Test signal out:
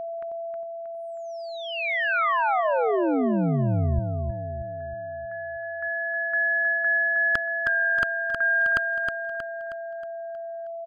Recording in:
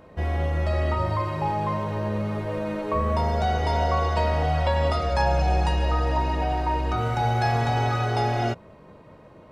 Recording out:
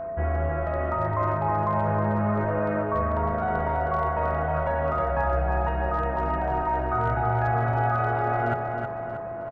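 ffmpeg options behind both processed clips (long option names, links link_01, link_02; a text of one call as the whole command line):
ffmpeg -i in.wav -filter_complex "[0:a]lowpass=frequency=1900:width=0.5412,lowpass=frequency=1900:width=1.3066,equalizer=frequency=1400:width_type=o:width=0.59:gain=7.5,areverse,acompressor=threshold=-27dB:ratio=20,areverse,aeval=exprs='clip(val(0),-1,0.0708)':channel_layout=same,aeval=exprs='val(0)+0.0178*sin(2*PI*670*n/s)':channel_layout=same,asplit=2[link_01][link_02];[link_02]aecho=0:1:316|632|948|1264|1580|1896:0.531|0.255|0.122|0.0587|0.0282|0.0135[link_03];[link_01][link_03]amix=inputs=2:normalize=0,volume=5dB" out.wav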